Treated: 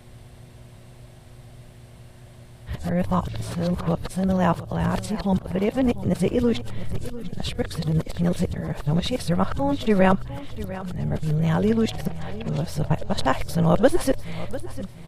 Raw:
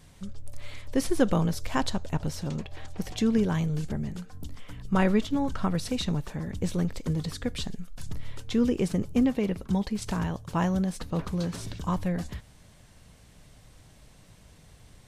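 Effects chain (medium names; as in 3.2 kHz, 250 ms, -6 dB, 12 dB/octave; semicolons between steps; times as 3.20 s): reverse the whole clip; fifteen-band graphic EQ 250 Hz -5 dB, 630 Hz +6 dB, 6.3 kHz -7 dB; mains buzz 120 Hz, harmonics 3, -58 dBFS -4 dB/octave; peaking EQ 120 Hz +5.5 dB 0.62 oct; on a send: feedback delay 698 ms, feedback 34%, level -15.5 dB; on the sum: trim +5 dB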